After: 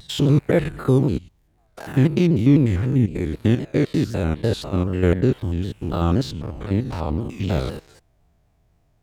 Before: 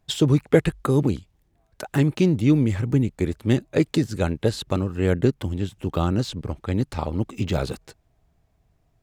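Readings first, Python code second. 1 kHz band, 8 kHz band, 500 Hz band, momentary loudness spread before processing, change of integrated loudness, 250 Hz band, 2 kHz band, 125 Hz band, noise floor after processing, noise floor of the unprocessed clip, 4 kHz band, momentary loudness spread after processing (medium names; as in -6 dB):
+0.5 dB, -3.0 dB, +1.0 dB, 9 LU, +2.0 dB, +2.0 dB, 0.0 dB, +3.0 dB, -62 dBFS, -67 dBFS, 0.0 dB, 9 LU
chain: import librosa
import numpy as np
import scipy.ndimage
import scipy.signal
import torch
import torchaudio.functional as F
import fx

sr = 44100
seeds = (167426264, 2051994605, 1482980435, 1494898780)

y = fx.spec_steps(x, sr, hold_ms=100)
y = fx.dynamic_eq(y, sr, hz=8000.0, q=1.2, threshold_db=-58.0, ratio=4.0, max_db=-5)
y = fx.vibrato_shape(y, sr, shape='saw_down', rate_hz=3.9, depth_cents=160.0)
y = y * librosa.db_to_amplitude(4.0)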